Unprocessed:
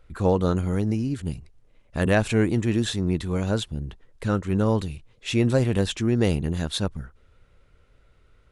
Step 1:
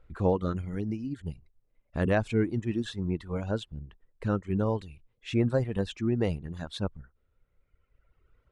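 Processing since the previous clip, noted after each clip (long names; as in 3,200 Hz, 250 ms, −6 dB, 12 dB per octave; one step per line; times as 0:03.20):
reverb reduction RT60 1.8 s
low-pass filter 1,800 Hz 6 dB per octave
level −3.5 dB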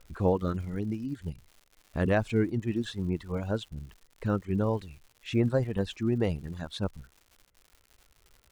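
surface crackle 200 per second −45 dBFS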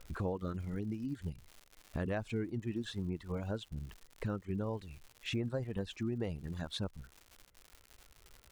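downward compressor 3 to 1, threshold −39 dBFS, peak gain reduction 14 dB
level +2 dB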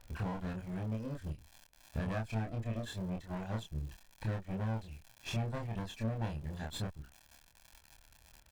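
lower of the sound and its delayed copy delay 1.2 ms
double-tracking delay 27 ms −2.5 dB
level −1.5 dB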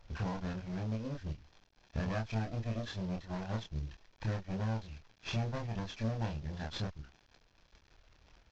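variable-slope delta modulation 32 kbit/s
level +1 dB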